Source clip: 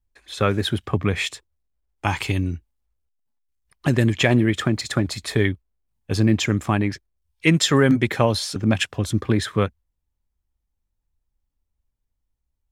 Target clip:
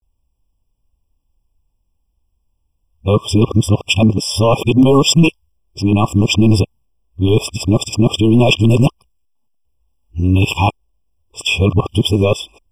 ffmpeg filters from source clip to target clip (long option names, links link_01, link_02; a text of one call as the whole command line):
ffmpeg -i in.wav -af "areverse,apsyclip=14.5dB,afftfilt=real='re*eq(mod(floor(b*sr/1024/1200),2),0)':imag='im*eq(mod(floor(b*sr/1024/1200),2),0)':win_size=1024:overlap=0.75,volume=-3.5dB" out.wav